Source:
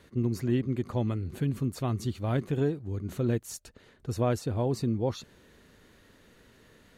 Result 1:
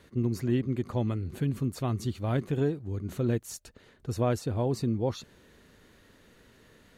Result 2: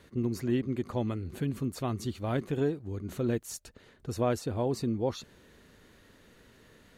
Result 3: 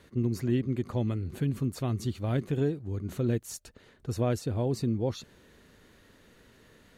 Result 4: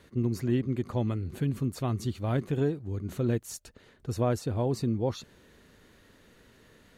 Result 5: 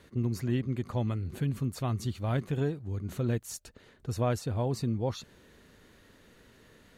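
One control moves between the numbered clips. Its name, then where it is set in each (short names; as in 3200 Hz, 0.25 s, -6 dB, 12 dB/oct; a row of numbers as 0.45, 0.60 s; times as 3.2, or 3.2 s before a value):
dynamic EQ, frequency: 9900, 120, 1000, 2900, 340 Hz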